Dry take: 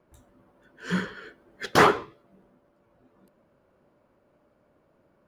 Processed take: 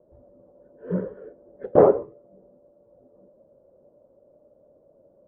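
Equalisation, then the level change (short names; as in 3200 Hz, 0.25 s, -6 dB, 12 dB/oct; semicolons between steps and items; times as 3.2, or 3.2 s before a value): synth low-pass 560 Hz, resonance Q 4.9; air absorption 280 m; 0.0 dB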